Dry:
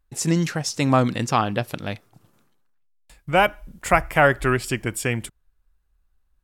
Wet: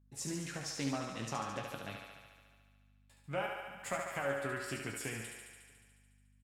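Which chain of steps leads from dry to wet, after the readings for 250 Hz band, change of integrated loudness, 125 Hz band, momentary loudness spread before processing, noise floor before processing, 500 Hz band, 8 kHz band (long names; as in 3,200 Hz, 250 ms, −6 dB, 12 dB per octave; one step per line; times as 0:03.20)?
−17.5 dB, −18.0 dB, −20.0 dB, 13 LU, −67 dBFS, −17.0 dB, −12.5 dB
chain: high-pass filter 110 Hz 24 dB per octave
downward compressor, threshold −21 dBFS, peak gain reduction 10.5 dB
resonators tuned to a chord F#2 minor, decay 0.21 s
slap from a distant wall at 110 metres, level −29 dB
mains hum 50 Hz, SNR 23 dB
on a send: feedback echo with a high-pass in the loop 72 ms, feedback 76%, high-pass 290 Hz, level −4.5 dB
on the sum: highs frequency-modulated by the lows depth 0.2 ms
level −3.5 dB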